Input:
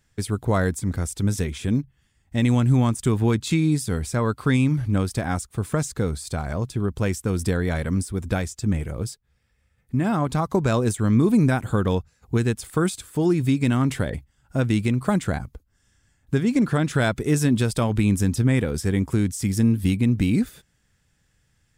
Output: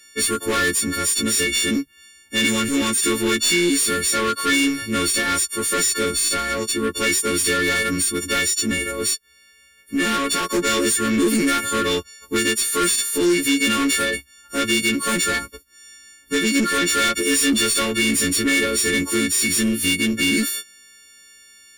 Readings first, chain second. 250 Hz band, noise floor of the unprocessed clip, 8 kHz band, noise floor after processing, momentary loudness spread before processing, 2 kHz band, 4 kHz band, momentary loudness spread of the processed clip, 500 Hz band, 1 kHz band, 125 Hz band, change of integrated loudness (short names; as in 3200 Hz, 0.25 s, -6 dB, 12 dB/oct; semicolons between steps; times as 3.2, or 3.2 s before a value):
0.0 dB, -67 dBFS, +15.5 dB, -53 dBFS, 8 LU, +12.0 dB, +16.5 dB, 5 LU, +2.5 dB, +6.0 dB, -13.5 dB, +4.0 dB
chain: frequency quantiser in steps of 4 st; overdrive pedal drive 25 dB, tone 5000 Hz, clips at -6 dBFS; fixed phaser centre 320 Hz, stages 4; gain -2.5 dB